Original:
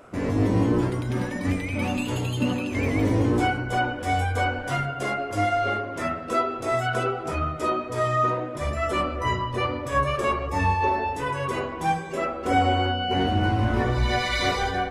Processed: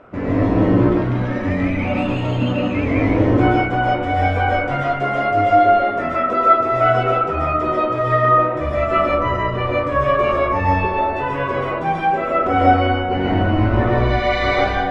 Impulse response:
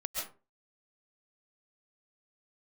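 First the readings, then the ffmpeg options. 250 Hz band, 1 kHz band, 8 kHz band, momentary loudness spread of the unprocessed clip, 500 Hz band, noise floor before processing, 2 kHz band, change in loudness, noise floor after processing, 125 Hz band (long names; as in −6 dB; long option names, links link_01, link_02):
+7.0 dB, +8.0 dB, below −10 dB, 5 LU, +9.0 dB, −34 dBFS, +5.5 dB, +7.5 dB, −23 dBFS, +5.5 dB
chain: -filter_complex "[0:a]lowpass=2500[link_01];[1:a]atrim=start_sample=2205[link_02];[link_01][link_02]afir=irnorm=-1:irlink=0,volume=5.5dB"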